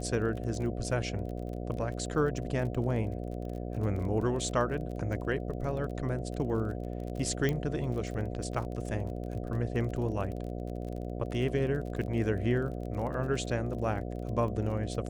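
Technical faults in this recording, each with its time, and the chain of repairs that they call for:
buzz 60 Hz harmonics 12 -37 dBFS
crackle 27/s -38 dBFS
7.49 pop -17 dBFS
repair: de-click; de-hum 60 Hz, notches 12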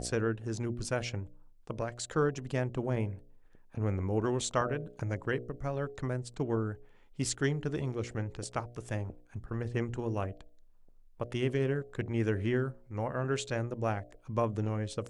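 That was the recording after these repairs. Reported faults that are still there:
none

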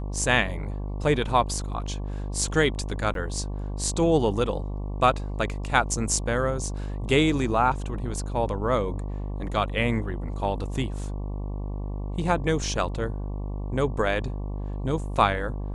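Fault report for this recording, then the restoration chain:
buzz 50 Hz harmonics 23 -31 dBFS
3.14–3.15 gap 12 ms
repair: de-hum 50 Hz, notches 23; interpolate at 3.14, 12 ms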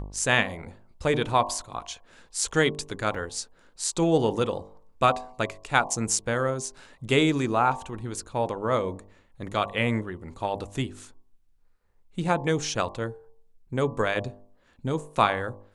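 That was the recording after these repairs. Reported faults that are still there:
none

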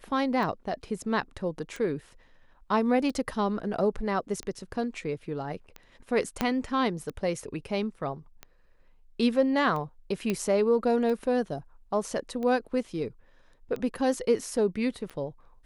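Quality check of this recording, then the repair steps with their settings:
tick 45 rpm
6.41 pop -11 dBFS
10.3 pop -15 dBFS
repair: de-click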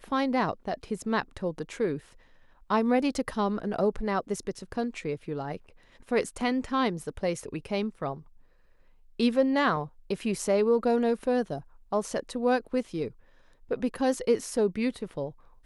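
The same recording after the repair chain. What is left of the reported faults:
6.41 pop

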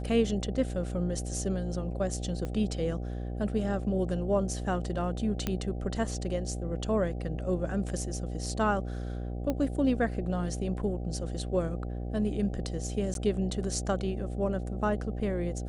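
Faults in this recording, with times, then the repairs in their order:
buzz 60 Hz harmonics 13 -35 dBFS
2.45 pop -23 dBFS
5.47 pop -15 dBFS
9.5 pop -18 dBFS
13.14–13.15 gap 12 ms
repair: de-click; de-hum 60 Hz, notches 13; interpolate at 13.14, 12 ms

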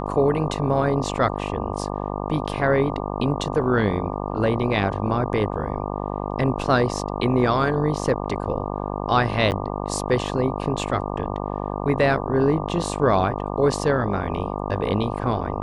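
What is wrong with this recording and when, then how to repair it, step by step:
buzz 50 Hz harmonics 24 -28 dBFS
9.51–9.52 gap 9.5 ms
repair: de-hum 50 Hz, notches 24; interpolate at 9.51, 9.5 ms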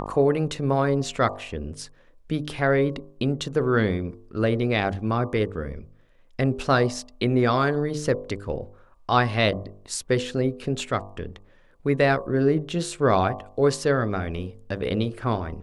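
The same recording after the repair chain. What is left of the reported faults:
none

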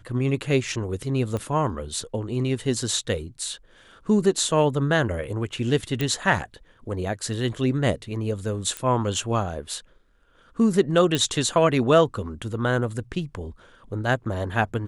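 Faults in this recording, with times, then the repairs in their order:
1.37 pop -17 dBFS
6.01 pop -12 dBFS
8.77 pop -14 dBFS
11.15 pop -10 dBFS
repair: de-click

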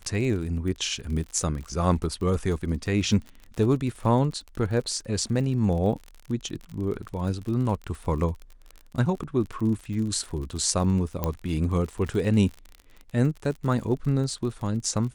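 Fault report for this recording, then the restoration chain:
crackle 44/s -33 dBFS
11.24 pop -12 dBFS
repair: de-click

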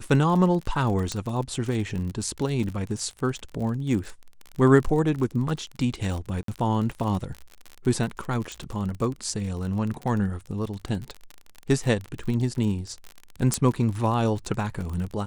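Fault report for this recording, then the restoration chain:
crackle 39/s -30 dBFS
1.12 pop -15 dBFS
6.43–6.48 gap 53 ms
8.52 pop
13.54 pop -9 dBFS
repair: de-click; interpolate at 6.43, 53 ms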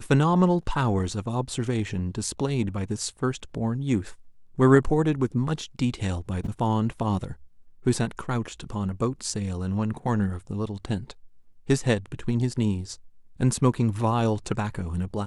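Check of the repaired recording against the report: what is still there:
8.52 pop

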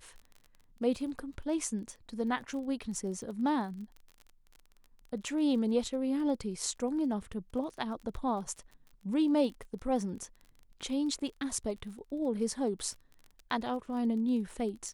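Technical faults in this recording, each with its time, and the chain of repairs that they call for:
crackle 29/s -42 dBFS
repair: de-click

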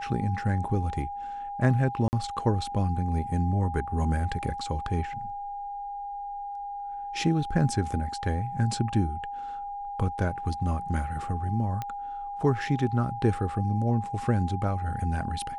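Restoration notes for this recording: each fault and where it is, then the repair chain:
tone 810 Hz -33 dBFS
2.08–2.13 gap 49 ms
11.82 pop -19 dBFS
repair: de-click; notch 810 Hz, Q 30; interpolate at 2.08, 49 ms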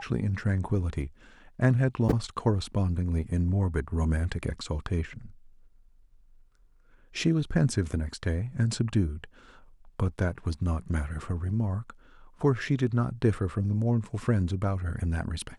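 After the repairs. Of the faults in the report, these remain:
none

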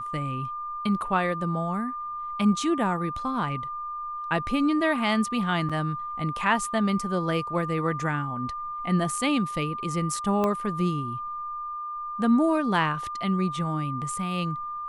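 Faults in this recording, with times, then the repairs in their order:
tone 1200 Hz -31 dBFS
5.69–5.7 gap 5.9 ms
10.44 pop -14 dBFS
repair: de-click; notch 1200 Hz, Q 30; interpolate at 5.69, 5.9 ms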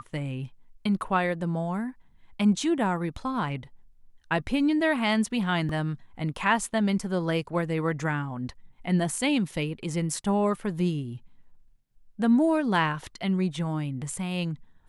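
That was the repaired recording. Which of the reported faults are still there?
10.44 pop

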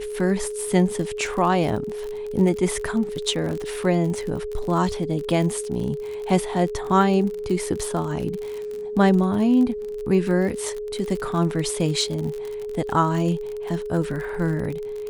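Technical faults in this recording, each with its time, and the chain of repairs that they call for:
crackle 46/s -28 dBFS
tone 420 Hz -28 dBFS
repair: de-click; notch 420 Hz, Q 30

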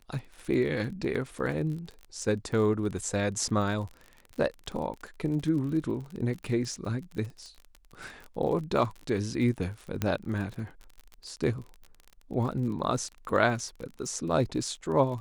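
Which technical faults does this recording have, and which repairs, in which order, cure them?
crackle 35/s -36 dBFS
10.02 pop -14 dBFS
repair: de-click

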